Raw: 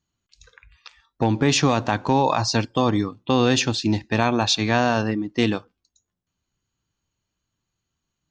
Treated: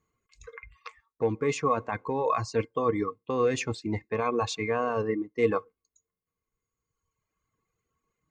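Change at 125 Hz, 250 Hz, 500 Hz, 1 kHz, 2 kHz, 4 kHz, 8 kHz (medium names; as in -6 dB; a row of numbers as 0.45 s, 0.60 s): -11.5 dB, -11.0 dB, -3.0 dB, -7.0 dB, -9.5 dB, -17.0 dB, -13.0 dB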